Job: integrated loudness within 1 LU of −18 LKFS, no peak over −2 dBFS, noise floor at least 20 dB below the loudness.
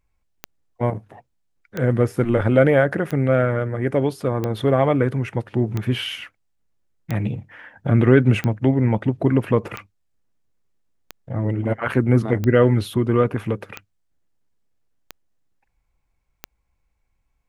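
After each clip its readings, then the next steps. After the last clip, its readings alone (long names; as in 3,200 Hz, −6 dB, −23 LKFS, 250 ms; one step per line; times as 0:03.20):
number of clicks 13; integrated loudness −20.5 LKFS; sample peak −1.5 dBFS; target loudness −18.0 LKFS
→ click removal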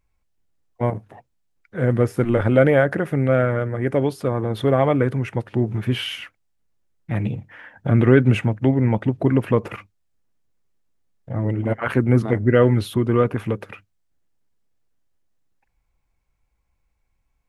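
number of clicks 0; integrated loudness −20.5 LKFS; sample peak −1.5 dBFS; target loudness −18.0 LKFS
→ level +2.5 dB
brickwall limiter −2 dBFS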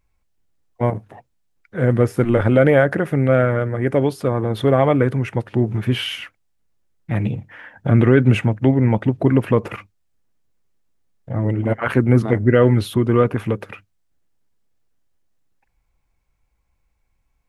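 integrated loudness −18.0 LKFS; sample peak −2.0 dBFS; background noise floor −68 dBFS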